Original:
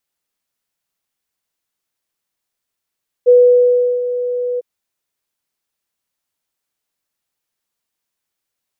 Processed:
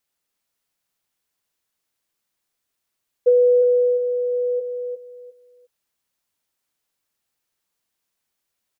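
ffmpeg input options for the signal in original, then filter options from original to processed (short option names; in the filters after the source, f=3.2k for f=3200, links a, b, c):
-f lavfi -i "aevalsrc='0.631*sin(2*PI*492*t)':d=1.352:s=44100,afade=t=in:d=0.026,afade=t=out:st=0.026:d=0.722:silence=0.237,afade=t=out:st=1.33:d=0.022"
-af "acompressor=threshold=-13dB:ratio=6,aecho=1:1:353|706|1059:0.447|0.0983|0.0216"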